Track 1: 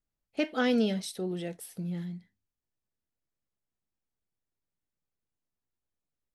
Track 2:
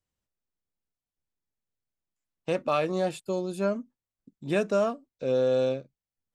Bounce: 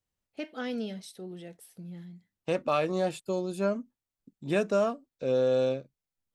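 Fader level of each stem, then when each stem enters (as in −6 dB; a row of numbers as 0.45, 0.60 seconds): −8.0, −1.0 decibels; 0.00, 0.00 seconds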